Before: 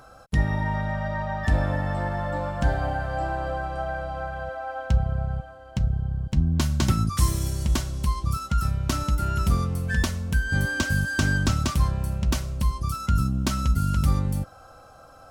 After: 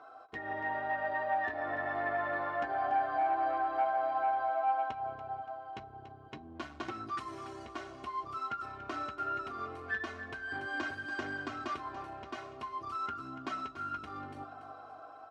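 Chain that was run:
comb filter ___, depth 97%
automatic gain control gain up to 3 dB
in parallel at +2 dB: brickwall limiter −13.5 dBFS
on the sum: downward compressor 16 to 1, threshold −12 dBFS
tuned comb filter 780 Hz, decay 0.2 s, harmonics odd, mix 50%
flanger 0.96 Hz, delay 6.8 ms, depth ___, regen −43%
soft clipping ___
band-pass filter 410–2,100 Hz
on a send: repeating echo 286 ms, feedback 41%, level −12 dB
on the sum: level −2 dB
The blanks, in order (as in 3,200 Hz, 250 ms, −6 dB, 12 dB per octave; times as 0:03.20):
2.8 ms, 3.2 ms, −19.5 dBFS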